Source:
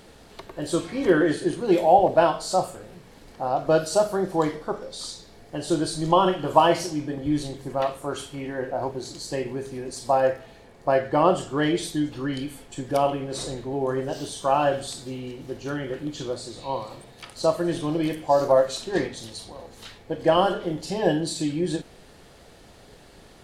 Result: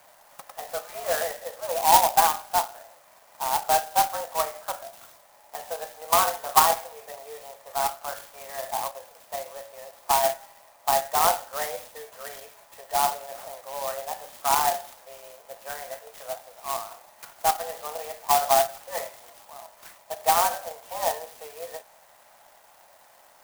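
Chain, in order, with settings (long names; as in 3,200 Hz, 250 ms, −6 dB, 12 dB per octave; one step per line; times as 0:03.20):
dynamic equaliser 2,300 Hz, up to −5 dB, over −41 dBFS, Q 1.4
single-sideband voice off tune +150 Hz 500–3,200 Hz
converter with an unsteady clock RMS 0.09 ms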